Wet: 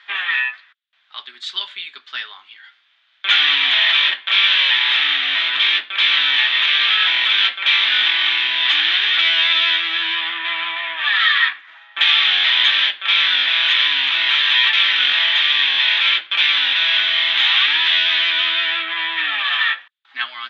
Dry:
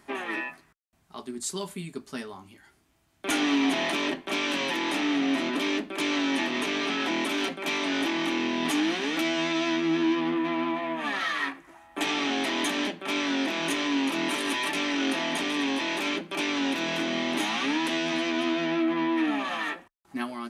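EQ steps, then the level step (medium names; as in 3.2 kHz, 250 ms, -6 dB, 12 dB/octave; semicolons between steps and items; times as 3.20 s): resonant high-pass 1.6 kHz, resonance Q 2.1; resonant low-pass 3.5 kHz, resonance Q 6.4; distance through air 100 m; +6.5 dB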